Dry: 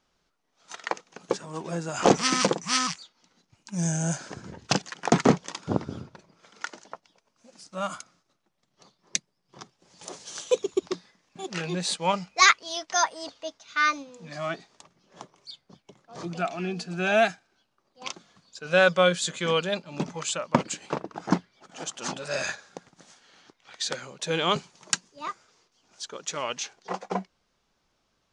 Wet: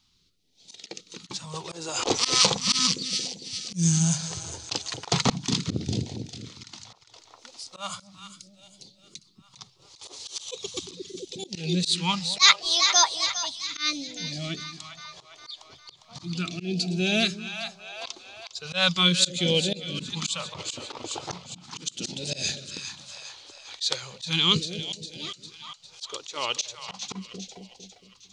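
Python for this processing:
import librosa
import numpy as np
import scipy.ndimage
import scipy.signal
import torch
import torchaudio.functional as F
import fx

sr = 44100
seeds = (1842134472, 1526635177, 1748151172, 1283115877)

y = fx.graphic_eq_15(x, sr, hz=(100, 630, 1600, 4000), db=(7, -7, -11, 9))
y = fx.echo_split(y, sr, split_hz=640.0, low_ms=227, high_ms=404, feedback_pct=52, wet_db=-11.0)
y = fx.phaser_stages(y, sr, stages=2, low_hz=170.0, high_hz=1200.0, hz=0.37, feedback_pct=0)
y = fx.auto_swell(y, sr, attack_ms=126.0)
y = F.gain(torch.from_numpy(y), 5.5).numpy()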